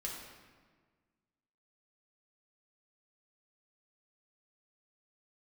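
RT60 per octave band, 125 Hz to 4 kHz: 1.9 s, 1.9 s, 1.6 s, 1.5 s, 1.3 s, 1.1 s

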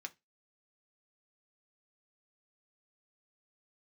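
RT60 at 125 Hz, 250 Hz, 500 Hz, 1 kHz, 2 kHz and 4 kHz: 0.25 s, 0.20 s, 0.20 s, 0.20 s, 0.20 s, 0.20 s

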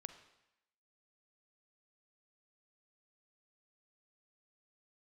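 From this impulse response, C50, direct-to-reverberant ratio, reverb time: 10.0 dB, 9.0 dB, 0.85 s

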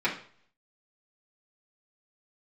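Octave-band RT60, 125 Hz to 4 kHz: 0.65 s, 0.50 s, 0.50 s, 0.50 s, 0.45 s, 0.45 s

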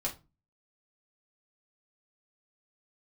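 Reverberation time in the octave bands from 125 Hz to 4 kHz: 0.50 s, 0.45 s, 0.30 s, 0.25 s, 0.20 s, 0.20 s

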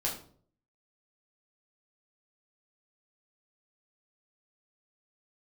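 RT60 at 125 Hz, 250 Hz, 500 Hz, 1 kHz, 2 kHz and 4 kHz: 0.75 s, 0.60 s, 0.60 s, 0.45 s, 0.35 s, 0.35 s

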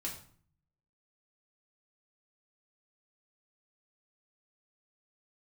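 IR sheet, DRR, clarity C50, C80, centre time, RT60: -3.5 dB, 7.5 dB, 11.5 dB, 25 ms, 0.50 s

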